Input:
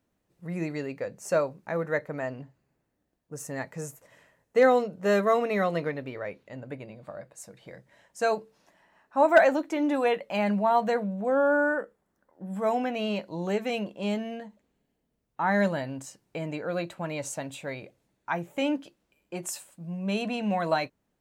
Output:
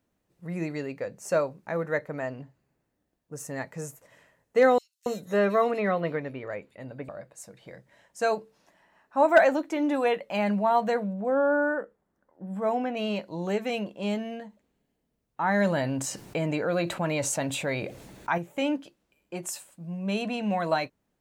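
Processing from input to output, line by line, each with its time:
4.78–7.09 s: bands offset in time highs, lows 280 ms, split 3.8 kHz
11.13–12.97 s: treble shelf 2.6 kHz -8.5 dB
15.61–18.38 s: level flattener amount 50%

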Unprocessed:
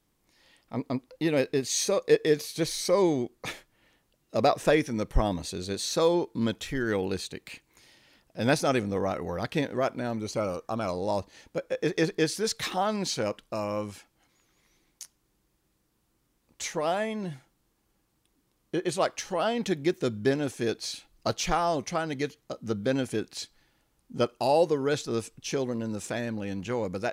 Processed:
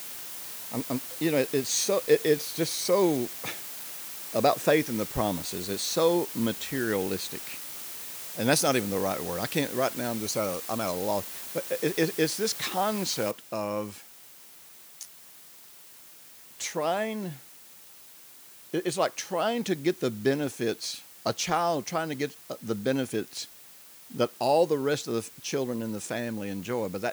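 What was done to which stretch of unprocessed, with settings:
8.51–10.92 s: treble shelf 4.9 kHz +11.5 dB
13.31 s: noise floor step -42 dB -53 dB
whole clip: high-pass 110 Hz 12 dB/octave; treble shelf 10 kHz +4.5 dB

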